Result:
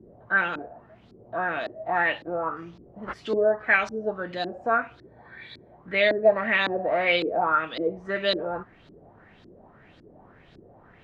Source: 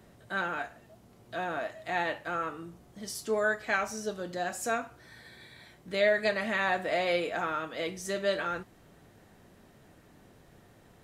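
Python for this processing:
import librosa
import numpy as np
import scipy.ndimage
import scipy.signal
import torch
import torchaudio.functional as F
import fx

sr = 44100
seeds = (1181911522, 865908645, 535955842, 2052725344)

y = fx.sample_hold(x, sr, seeds[0], rate_hz=6100.0, jitter_pct=0, at=(2.55, 3.12), fade=0.02)
y = fx.filter_lfo_lowpass(y, sr, shape='saw_up', hz=1.8, low_hz=300.0, high_hz=4400.0, q=3.8)
y = F.gain(torch.from_numpy(y), 2.5).numpy()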